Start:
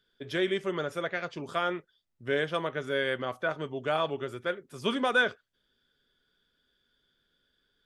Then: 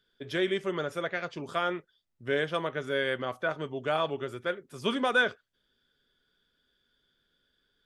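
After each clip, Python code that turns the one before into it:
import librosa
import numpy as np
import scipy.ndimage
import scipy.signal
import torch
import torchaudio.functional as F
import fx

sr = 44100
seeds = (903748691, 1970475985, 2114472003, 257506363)

y = x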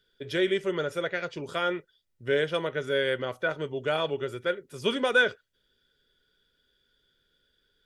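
y = fx.peak_eq(x, sr, hz=1000.0, db=-6.0, octaves=0.73)
y = y + 0.33 * np.pad(y, (int(2.1 * sr / 1000.0), 0))[:len(y)]
y = F.gain(torch.from_numpy(y), 2.5).numpy()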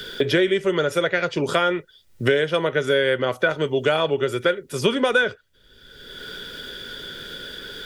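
y = fx.band_squash(x, sr, depth_pct=100)
y = F.gain(torch.from_numpy(y), 7.0).numpy()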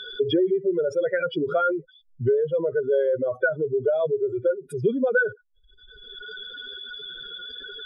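y = fx.spec_expand(x, sr, power=3.2)
y = F.gain(torch.from_numpy(y), -1.5).numpy()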